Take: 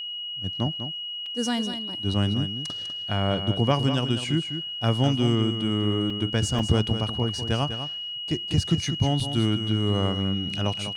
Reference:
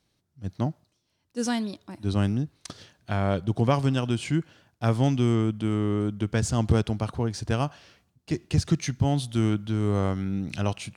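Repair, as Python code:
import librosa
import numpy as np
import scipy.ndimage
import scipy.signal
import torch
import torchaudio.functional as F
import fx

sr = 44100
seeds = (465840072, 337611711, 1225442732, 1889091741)

y = fx.notch(x, sr, hz=2900.0, q=30.0)
y = fx.fix_interpolate(y, sr, at_s=(1.26, 6.1, 6.59, 9.2), length_ms=3.6)
y = fx.fix_echo_inverse(y, sr, delay_ms=199, level_db=-9.5)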